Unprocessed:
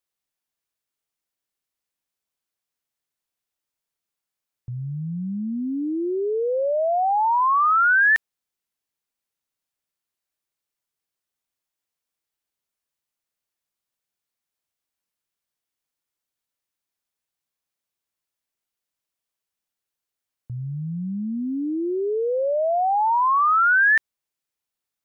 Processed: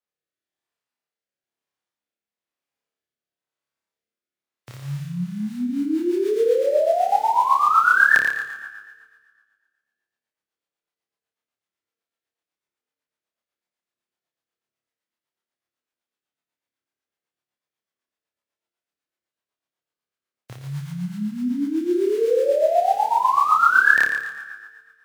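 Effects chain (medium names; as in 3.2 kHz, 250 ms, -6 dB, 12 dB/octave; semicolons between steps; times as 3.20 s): formants flattened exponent 0.3; low-pass 1.9 kHz 6 dB/octave; on a send: flutter echo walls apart 4.9 m, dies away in 0.87 s; on the sum: Schroeder reverb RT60 1.7 s, combs from 33 ms, DRR 9.5 dB; rotary cabinet horn 1 Hz, later 8 Hz, at 5.28 s; high-pass 240 Hz 6 dB/octave; trim +2 dB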